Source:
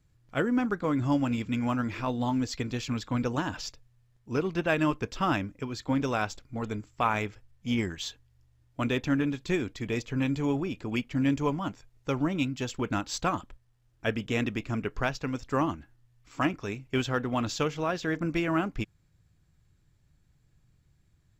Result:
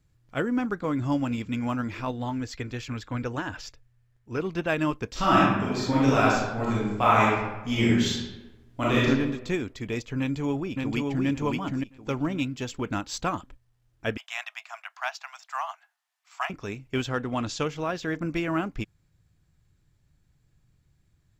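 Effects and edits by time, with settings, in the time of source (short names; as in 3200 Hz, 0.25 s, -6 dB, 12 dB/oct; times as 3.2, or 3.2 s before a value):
2.11–4.4 EQ curve 120 Hz 0 dB, 170 Hz -7 dB, 340 Hz -1 dB, 1100 Hz -2 dB, 1600 Hz +3 dB, 3900 Hz -4 dB
5.11–9.05 reverb throw, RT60 1.1 s, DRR -7.5 dB
10.19–11.26 echo throw 0.57 s, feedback 25%, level -2.5 dB
14.17–16.5 steep high-pass 660 Hz 96 dB/oct
17.08–17.66 careless resampling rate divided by 2×, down none, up filtered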